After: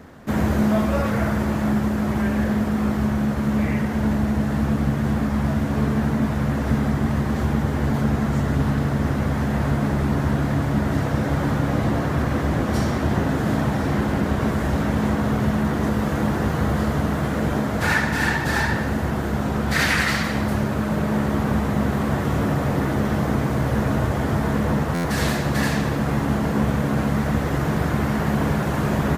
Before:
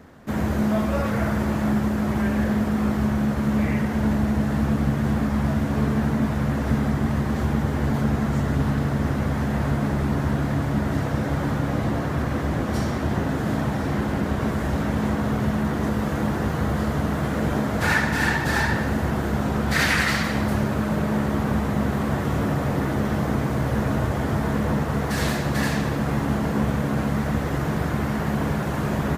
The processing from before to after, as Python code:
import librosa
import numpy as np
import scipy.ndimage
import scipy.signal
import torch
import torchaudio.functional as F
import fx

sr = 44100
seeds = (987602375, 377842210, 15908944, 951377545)

y = fx.rider(x, sr, range_db=4, speed_s=2.0)
y = fx.buffer_glitch(y, sr, at_s=(24.94,), block=512, repeats=8)
y = F.gain(torch.from_numpy(y), 1.5).numpy()